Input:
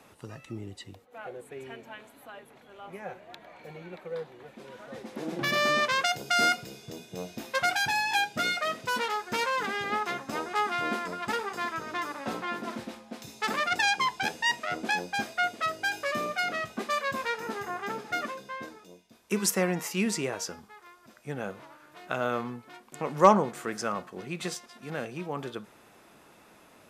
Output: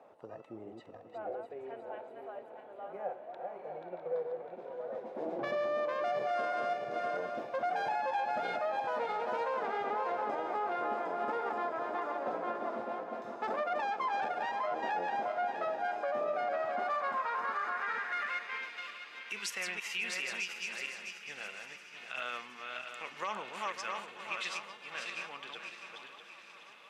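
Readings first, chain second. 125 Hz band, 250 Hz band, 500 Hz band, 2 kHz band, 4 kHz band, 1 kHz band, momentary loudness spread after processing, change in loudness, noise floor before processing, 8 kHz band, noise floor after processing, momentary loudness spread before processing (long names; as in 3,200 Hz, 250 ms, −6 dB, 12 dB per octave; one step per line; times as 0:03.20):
below −15 dB, −13.0 dB, −3.0 dB, −8.0 dB, −11.0 dB, −4.0 dB, 12 LU, −7.0 dB, −57 dBFS, −12.5 dB, −53 dBFS, 20 LU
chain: feedback delay that plays each chunk backwards 326 ms, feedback 56%, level −4.5 dB
feedback echo with a long and a short gap by turns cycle 719 ms, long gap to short 3 to 1, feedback 67%, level −18 dB
band-pass filter sweep 630 Hz → 2,700 Hz, 0:16.48–0:18.81
brickwall limiter −30.5 dBFS, peak gain reduction 11 dB
every ending faded ahead of time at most 370 dB per second
level +4.5 dB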